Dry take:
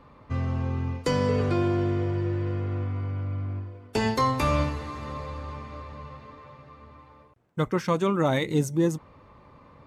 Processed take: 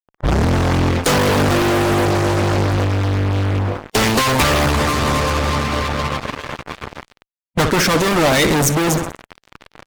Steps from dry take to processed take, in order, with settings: tape start at the beginning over 0.48 s; feedback echo 63 ms, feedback 59%, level -17.5 dB; fuzz box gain 41 dB, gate -44 dBFS; harmonic-percussive split percussive +8 dB; gain -3.5 dB

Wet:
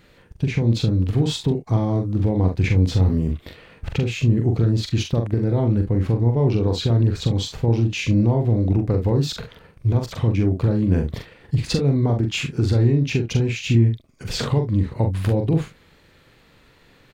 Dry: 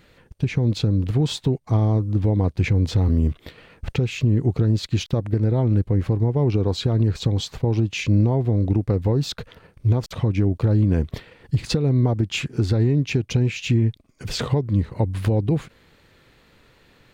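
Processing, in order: early reflections 43 ms -5 dB, 69 ms -16 dB

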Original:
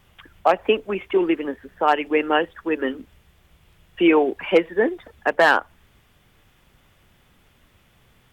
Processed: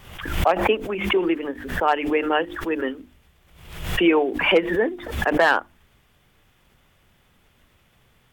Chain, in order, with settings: notches 50/100/150/200/250/300/350 Hz; backwards sustainer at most 70 dB/s; gain -2 dB

